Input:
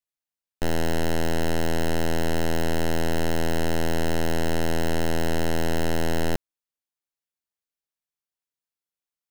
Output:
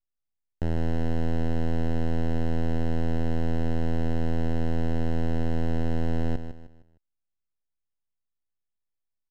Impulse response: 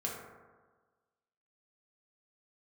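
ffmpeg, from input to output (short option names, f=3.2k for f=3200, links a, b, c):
-af "aeval=exprs='max(val(0),0)':c=same,aemphasis=mode=reproduction:type=riaa,aecho=1:1:154|308|462|616:0.316|0.111|0.0387|0.0136,volume=-3dB"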